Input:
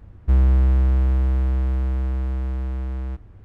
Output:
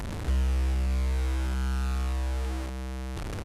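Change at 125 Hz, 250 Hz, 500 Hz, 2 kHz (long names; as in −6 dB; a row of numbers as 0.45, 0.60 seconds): −8.5, −6.0, −3.0, +3.0 decibels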